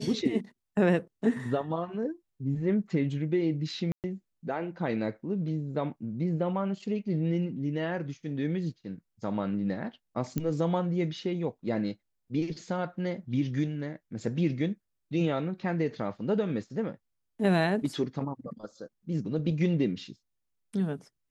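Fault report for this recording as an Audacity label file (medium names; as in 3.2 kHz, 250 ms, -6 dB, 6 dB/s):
3.920000	4.040000	dropout 118 ms
10.380000	10.380000	pop -17 dBFS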